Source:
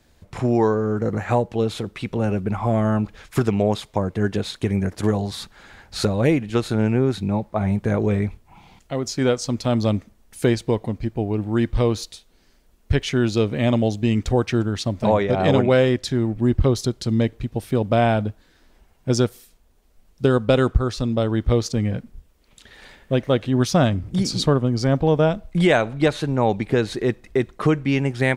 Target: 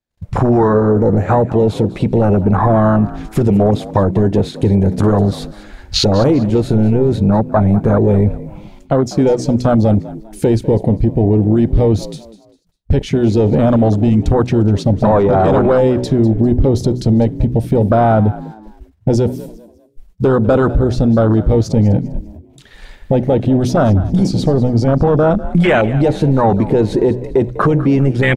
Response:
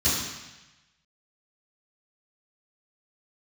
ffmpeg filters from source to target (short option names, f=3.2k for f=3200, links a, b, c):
-filter_complex "[0:a]apsyclip=21dB,bandreject=f=62.14:t=h:w=4,bandreject=f=124.28:t=h:w=4,bandreject=f=186.42:t=h:w=4,bandreject=f=248.56:t=h:w=4,bandreject=f=310.7:t=h:w=4,bandreject=f=372.84:t=h:w=4,bandreject=f=434.98:t=h:w=4,agate=range=-30dB:threshold=-32dB:ratio=16:detection=peak,acompressor=threshold=-11dB:ratio=2,afwtdn=0.251,asplit=2[a][b];[b]asplit=3[c][d][e];[c]adelay=199,afreqshift=54,volume=-17dB[f];[d]adelay=398,afreqshift=108,volume=-27.2dB[g];[e]adelay=597,afreqshift=162,volume=-37.3dB[h];[f][g][h]amix=inputs=3:normalize=0[i];[a][i]amix=inputs=2:normalize=0,volume=-1.5dB"